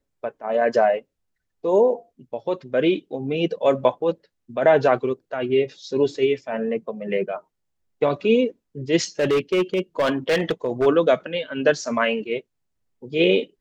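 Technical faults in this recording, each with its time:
9.19–10.87 clipped -15.5 dBFS

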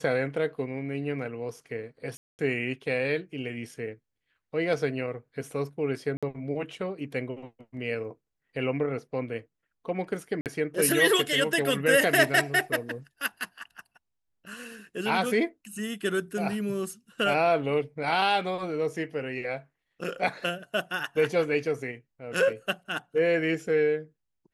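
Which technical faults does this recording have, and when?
2.17–2.39 gap 0.219 s
6.17–6.23 gap 56 ms
10.41–10.46 gap 48 ms

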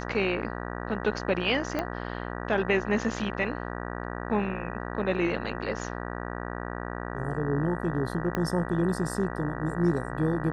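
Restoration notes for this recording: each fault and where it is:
buzz 60 Hz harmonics 32 -35 dBFS
1.79 pop -15 dBFS
8.35 pop -15 dBFS

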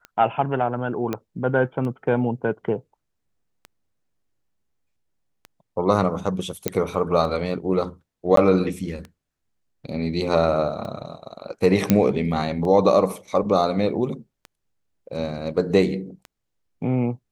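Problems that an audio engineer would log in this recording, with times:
tick 33 1/3 rpm -22 dBFS
1.13 pop -13 dBFS
6.68 pop -5 dBFS
8.36–8.37 gap 13 ms
11.9 pop -3 dBFS

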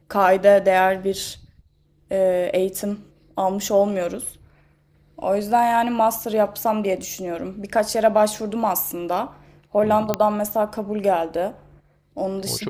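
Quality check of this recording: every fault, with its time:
7.02 gap 4.4 ms
10.14 pop -6 dBFS

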